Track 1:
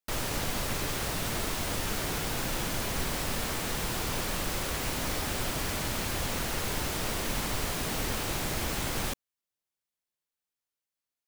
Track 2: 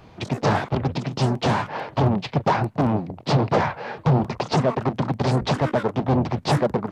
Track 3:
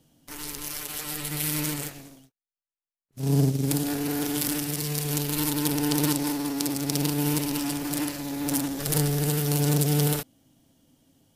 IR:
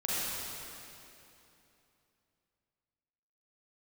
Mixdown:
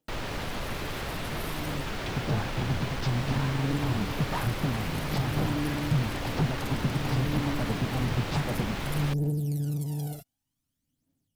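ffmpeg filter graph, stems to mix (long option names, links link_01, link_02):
-filter_complex "[0:a]acrossover=split=4500[link_01][link_02];[link_02]acompressor=threshold=-54dB:ratio=4:attack=1:release=60[link_03];[link_01][link_03]amix=inputs=2:normalize=0,asoftclip=type=hard:threshold=-27.5dB,volume=0dB[link_04];[1:a]acrossover=split=860[link_05][link_06];[link_05]aeval=exprs='val(0)*(1-0.7/2+0.7/2*cos(2*PI*2.2*n/s))':channel_layout=same[link_07];[link_06]aeval=exprs='val(0)*(1-0.7/2-0.7/2*cos(2*PI*2.2*n/s))':channel_layout=same[link_08];[link_07][link_08]amix=inputs=2:normalize=0,adelay=1850,volume=-7dB[link_09];[2:a]afwtdn=0.0398,bass=frequency=250:gain=-12,treble=frequency=4000:gain=4,aphaser=in_gain=1:out_gain=1:delay=1.5:decay=0.75:speed=0.54:type=triangular,volume=-8dB[link_10];[link_09][link_10]amix=inputs=2:normalize=0,asubboost=boost=4.5:cutoff=210,acompressor=threshold=-26dB:ratio=3,volume=0dB[link_11];[link_04][link_11]amix=inputs=2:normalize=0"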